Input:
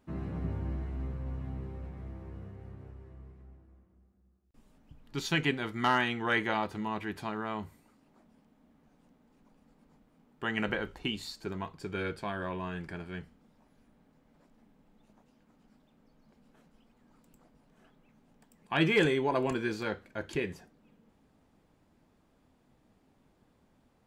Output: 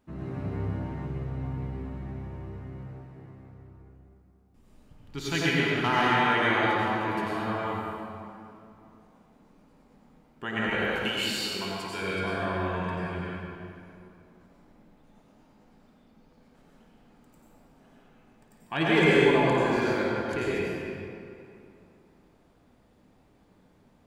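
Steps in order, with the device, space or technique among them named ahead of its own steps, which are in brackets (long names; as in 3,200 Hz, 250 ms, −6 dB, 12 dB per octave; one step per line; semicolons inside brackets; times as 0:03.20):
0:10.78–0:12.02: spectral tilt +3 dB per octave
tunnel (flutter between parallel walls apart 9.3 metres, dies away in 0.27 s; convolution reverb RT60 2.7 s, pre-delay 82 ms, DRR −7 dB)
level −1.5 dB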